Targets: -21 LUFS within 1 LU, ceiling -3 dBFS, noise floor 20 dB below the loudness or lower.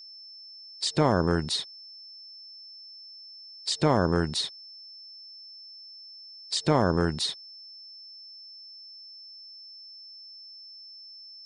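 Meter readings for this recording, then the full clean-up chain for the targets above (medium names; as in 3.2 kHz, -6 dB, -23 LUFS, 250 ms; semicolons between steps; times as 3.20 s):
steady tone 5.3 kHz; tone level -44 dBFS; loudness -26.5 LUFS; peak level -10.5 dBFS; loudness target -21.0 LUFS
-> band-stop 5.3 kHz, Q 30; trim +5.5 dB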